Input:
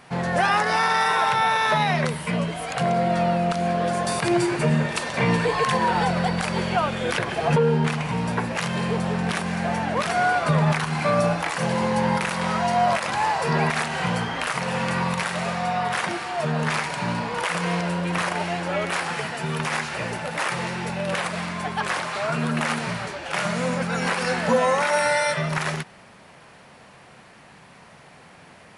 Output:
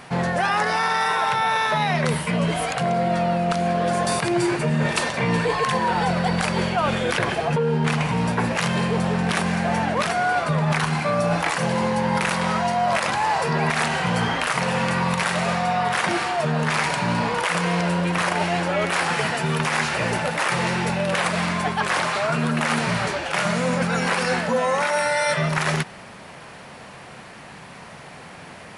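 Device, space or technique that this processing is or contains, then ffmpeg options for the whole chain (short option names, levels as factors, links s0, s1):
compression on the reversed sound: -af "areverse,acompressor=threshold=0.0501:ratio=6,areverse,volume=2.37"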